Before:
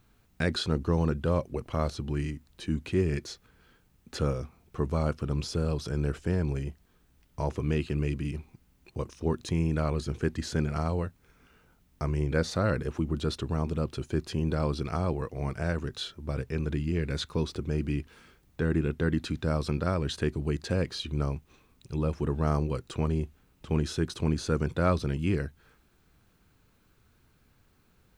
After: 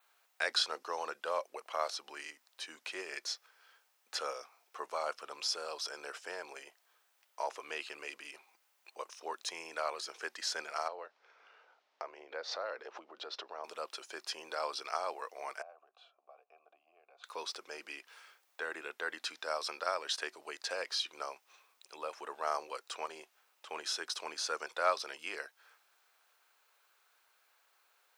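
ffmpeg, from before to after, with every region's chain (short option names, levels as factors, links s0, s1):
-filter_complex "[0:a]asettb=1/sr,asplit=3[s0][s1][s2];[s0]atrim=end=10.884[s3];[s1]atrim=start=10.88:end=13.64,asetpts=PTS-STARTPTS,afade=t=in:d=0.004:c=qsin,afade=t=out:st=2.756:d=0.004:c=qsin,lowpass=f=5100:w=0.5412,lowpass=f=5100:w=1.3066,acompressor=threshold=0.0141:ratio=3:attack=3.2:release=140:knee=1:detection=peak,equalizer=f=460:t=o:w=2:g=8[s4];[s2]atrim=start=13.636[s5];[s3][s4]acrossfade=d=0.004:c1=hsin:c2=qsin[s6];[s6][s5]acrossfade=d=0.004:c1=qsin:c2=hsin,asettb=1/sr,asplit=3[s7][s8][s9];[s7]atrim=end=15.624[s10];[s8]atrim=start=15.62:end=17.24,asetpts=PTS-STARTPTS,afade=t=in:d=0.004:c=qsin,afade=t=out:st=1.616:d=0.004:c=qsin,tiltshelf=f=730:g=7,acompressor=threshold=0.0316:ratio=3:attack=3.2:release=140:knee=1:detection=peak,asplit=3[s11][s12][s13];[s11]bandpass=f=730:t=q:w=8,volume=1[s14];[s12]bandpass=f=1090:t=q:w=8,volume=0.501[s15];[s13]bandpass=f=2440:t=q:w=8,volume=0.355[s16];[s14][s15][s16]amix=inputs=3:normalize=0[s17];[s9]atrim=start=17.236[s18];[s10][s17]acrossfade=d=0.004:c1=hsin:c2=qsin[s19];[s19][s18]acrossfade=d=0.004:c1=qsin:c2=hsin,highpass=f=640:w=0.5412,highpass=f=640:w=1.3066,adynamicequalizer=threshold=0.00112:dfrequency=5300:dqfactor=4:tfrequency=5300:tqfactor=4:attack=5:release=100:ratio=0.375:range=4:mode=boostabove:tftype=bell"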